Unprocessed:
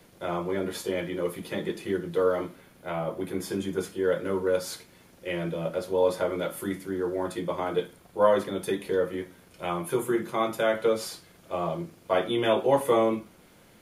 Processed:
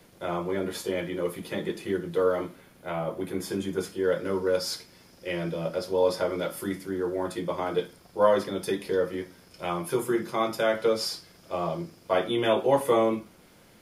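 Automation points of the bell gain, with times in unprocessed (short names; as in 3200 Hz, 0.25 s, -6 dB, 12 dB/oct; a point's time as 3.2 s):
bell 5100 Hz 0.28 oct
3.64 s +2 dB
4.36 s +13 dB
6.39 s +13 dB
7.14 s +2.5 dB
7.82 s +12.5 dB
11.81 s +12.5 dB
12.37 s +5 dB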